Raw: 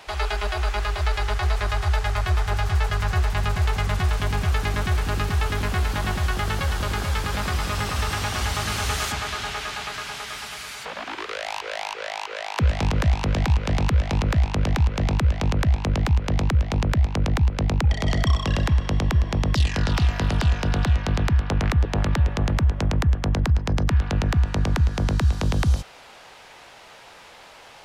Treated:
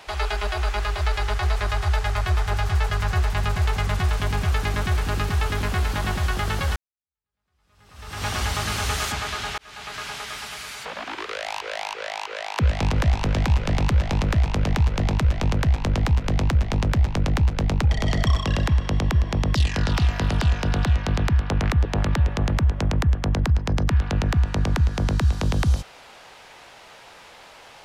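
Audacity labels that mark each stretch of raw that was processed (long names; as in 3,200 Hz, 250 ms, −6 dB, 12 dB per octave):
6.760000	8.260000	fade in exponential
9.580000	10.040000	fade in
12.690000	18.410000	echo with shifted repeats 116 ms, feedback 62%, per repeat −48 Hz, level −13.5 dB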